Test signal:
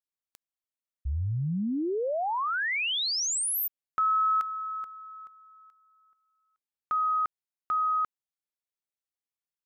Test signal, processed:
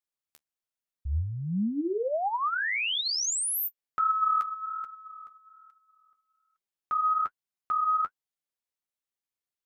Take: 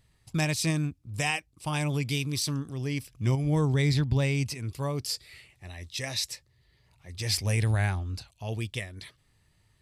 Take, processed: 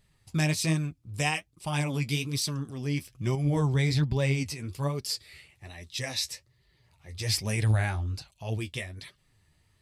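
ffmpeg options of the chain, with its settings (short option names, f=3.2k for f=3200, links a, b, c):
-af "flanger=delay=4.9:depth=8.7:regen=31:speed=1.2:shape=sinusoidal,volume=3.5dB"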